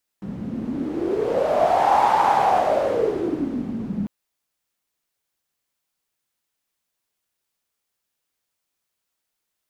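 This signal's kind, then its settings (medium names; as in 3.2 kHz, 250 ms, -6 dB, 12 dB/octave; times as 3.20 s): wind-like swept noise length 3.85 s, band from 200 Hz, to 860 Hz, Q 8, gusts 1, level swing 11 dB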